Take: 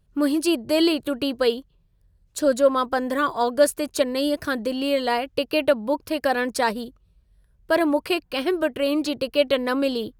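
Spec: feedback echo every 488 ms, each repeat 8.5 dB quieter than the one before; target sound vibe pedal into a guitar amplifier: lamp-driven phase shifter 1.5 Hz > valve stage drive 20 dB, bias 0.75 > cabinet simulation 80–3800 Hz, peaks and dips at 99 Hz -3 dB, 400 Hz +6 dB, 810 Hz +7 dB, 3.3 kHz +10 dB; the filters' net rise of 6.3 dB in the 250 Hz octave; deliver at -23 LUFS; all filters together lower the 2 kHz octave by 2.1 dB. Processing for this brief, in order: peaking EQ 250 Hz +6.5 dB; peaking EQ 2 kHz -4.5 dB; feedback delay 488 ms, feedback 38%, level -8.5 dB; lamp-driven phase shifter 1.5 Hz; valve stage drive 20 dB, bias 0.75; cabinet simulation 80–3800 Hz, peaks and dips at 99 Hz -3 dB, 400 Hz +6 dB, 810 Hz +7 dB, 3.3 kHz +10 dB; trim +4 dB

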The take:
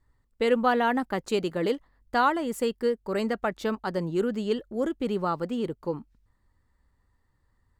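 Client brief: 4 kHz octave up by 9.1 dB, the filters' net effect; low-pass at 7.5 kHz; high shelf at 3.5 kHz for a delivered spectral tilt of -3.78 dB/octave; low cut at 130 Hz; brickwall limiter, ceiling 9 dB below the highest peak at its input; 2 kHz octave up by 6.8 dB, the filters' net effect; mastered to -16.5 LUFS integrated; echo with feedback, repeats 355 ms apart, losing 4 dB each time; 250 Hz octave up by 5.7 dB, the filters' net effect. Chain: high-pass 130 Hz; low-pass 7.5 kHz; peaking EQ 250 Hz +7 dB; peaking EQ 2 kHz +6 dB; treble shelf 3.5 kHz +9 dB; peaking EQ 4 kHz +4 dB; peak limiter -15.5 dBFS; feedback delay 355 ms, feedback 63%, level -4 dB; trim +8 dB

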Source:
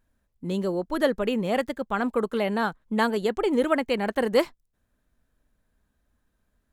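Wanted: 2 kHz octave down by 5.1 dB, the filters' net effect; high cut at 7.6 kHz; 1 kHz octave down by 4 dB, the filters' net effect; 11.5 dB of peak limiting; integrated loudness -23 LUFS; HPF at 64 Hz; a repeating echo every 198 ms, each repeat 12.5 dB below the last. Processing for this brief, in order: high-pass 64 Hz; low-pass 7.6 kHz; peaking EQ 1 kHz -4 dB; peaking EQ 2 kHz -5 dB; peak limiter -22 dBFS; feedback delay 198 ms, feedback 24%, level -12.5 dB; trim +8.5 dB

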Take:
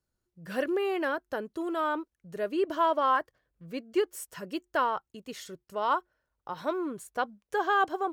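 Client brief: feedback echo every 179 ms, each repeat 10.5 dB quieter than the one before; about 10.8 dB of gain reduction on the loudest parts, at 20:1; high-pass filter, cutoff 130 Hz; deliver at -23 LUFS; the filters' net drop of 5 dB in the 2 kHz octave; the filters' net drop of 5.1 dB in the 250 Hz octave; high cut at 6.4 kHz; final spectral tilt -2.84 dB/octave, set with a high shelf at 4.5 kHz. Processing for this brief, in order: high-pass 130 Hz; low-pass 6.4 kHz; peaking EQ 250 Hz -8 dB; peaking EQ 2 kHz -6.5 dB; treble shelf 4.5 kHz -4 dB; compression 20:1, threshold -33 dBFS; feedback delay 179 ms, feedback 30%, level -10.5 dB; trim +17 dB

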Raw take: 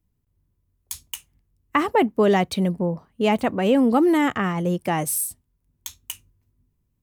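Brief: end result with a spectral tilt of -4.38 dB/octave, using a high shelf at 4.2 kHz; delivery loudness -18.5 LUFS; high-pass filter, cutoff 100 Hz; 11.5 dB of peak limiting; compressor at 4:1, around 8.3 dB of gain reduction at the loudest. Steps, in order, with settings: high-pass 100 Hz; treble shelf 4.2 kHz +8 dB; compression 4:1, threshold -24 dBFS; trim +10.5 dB; peak limiter -7.5 dBFS

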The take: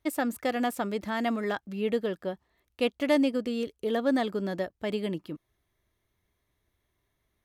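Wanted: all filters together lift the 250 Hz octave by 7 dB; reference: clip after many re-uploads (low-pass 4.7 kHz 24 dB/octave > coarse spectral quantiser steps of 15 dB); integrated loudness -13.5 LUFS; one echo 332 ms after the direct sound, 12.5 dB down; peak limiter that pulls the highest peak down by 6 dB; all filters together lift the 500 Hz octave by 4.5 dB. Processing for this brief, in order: peaking EQ 250 Hz +7 dB; peaking EQ 500 Hz +3.5 dB; peak limiter -15 dBFS; low-pass 4.7 kHz 24 dB/octave; delay 332 ms -12.5 dB; coarse spectral quantiser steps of 15 dB; trim +12.5 dB

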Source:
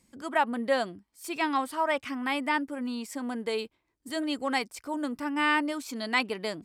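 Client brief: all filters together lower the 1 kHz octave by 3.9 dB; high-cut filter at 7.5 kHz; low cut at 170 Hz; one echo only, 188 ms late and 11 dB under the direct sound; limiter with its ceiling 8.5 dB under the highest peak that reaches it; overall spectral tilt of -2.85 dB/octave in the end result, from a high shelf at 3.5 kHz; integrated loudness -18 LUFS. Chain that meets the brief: high-pass 170 Hz; low-pass 7.5 kHz; peaking EQ 1 kHz -5 dB; treble shelf 3.5 kHz +4 dB; peak limiter -20.5 dBFS; delay 188 ms -11 dB; trim +15 dB

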